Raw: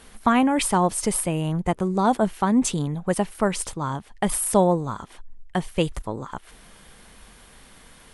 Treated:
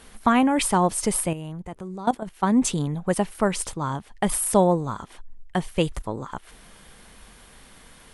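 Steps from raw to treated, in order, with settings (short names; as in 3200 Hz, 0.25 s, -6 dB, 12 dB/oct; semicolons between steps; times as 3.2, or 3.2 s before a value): 1.33–2.43 level quantiser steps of 17 dB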